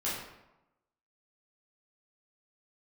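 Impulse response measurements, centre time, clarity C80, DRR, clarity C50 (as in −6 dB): 61 ms, 4.5 dB, −9.0 dB, 1.5 dB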